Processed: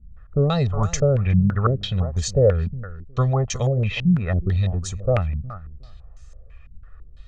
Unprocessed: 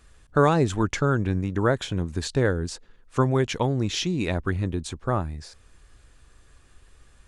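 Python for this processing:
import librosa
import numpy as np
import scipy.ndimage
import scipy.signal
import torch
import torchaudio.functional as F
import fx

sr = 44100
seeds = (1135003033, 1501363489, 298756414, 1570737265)

y = fx.low_shelf(x, sr, hz=140.0, db=12.0)
y = y + 0.94 * np.pad(y, (int(1.6 * sr / 1000.0), 0))[:len(y)]
y = fx.wow_flutter(y, sr, seeds[0], rate_hz=2.1, depth_cents=29.0)
y = fx.echo_feedback(y, sr, ms=363, feedback_pct=16, wet_db=-15)
y = fx.filter_held_lowpass(y, sr, hz=6.0, low_hz=200.0, high_hz=6500.0)
y = y * 10.0 ** (-5.5 / 20.0)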